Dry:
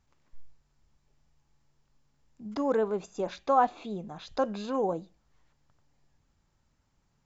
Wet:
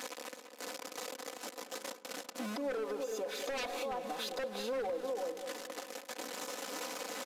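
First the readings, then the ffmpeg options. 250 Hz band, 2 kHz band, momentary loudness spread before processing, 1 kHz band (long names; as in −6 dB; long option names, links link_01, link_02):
−9.0 dB, +2.5 dB, 14 LU, −11.0 dB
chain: -filter_complex "[0:a]aeval=exprs='val(0)+0.5*0.0168*sgn(val(0))':channel_layout=same,highpass=frequency=300:width=0.5412,highpass=frequency=300:width=1.3066,aecho=1:1:4:0.68,asplit=2[link_01][link_02];[link_02]aecho=0:1:335:0.282[link_03];[link_01][link_03]amix=inputs=2:normalize=0,aeval=exprs='0.0794*(abs(mod(val(0)/0.0794+3,4)-2)-1)':channel_layout=same,acompressor=threshold=-36dB:ratio=6,equalizer=frequency=520:width_type=o:width=0.32:gain=8,asplit=2[link_04][link_05];[link_05]adelay=204,lowpass=frequency=1600:poles=1,volume=-11dB,asplit=2[link_06][link_07];[link_07]adelay=204,lowpass=frequency=1600:poles=1,volume=0.54,asplit=2[link_08][link_09];[link_09]adelay=204,lowpass=frequency=1600:poles=1,volume=0.54,asplit=2[link_10][link_11];[link_11]adelay=204,lowpass=frequency=1600:poles=1,volume=0.54,asplit=2[link_12][link_13];[link_13]adelay=204,lowpass=frequency=1600:poles=1,volume=0.54,asplit=2[link_14][link_15];[link_15]adelay=204,lowpass=frequency=1600:poles=1,volume=0.54[link_16];[link_06][link_08][link_10][link_12][link_14][link_16]amix=inputs=6:normalize=0[link_17];[link_04][link_17]amix=inputs=2:normalize=0,aresample=32000,aresample=44100,alimiter=level_in=8.5dB:limit=-24dB:level=0:latency=1:release=209,volume=-8.5dB,volume=3dB"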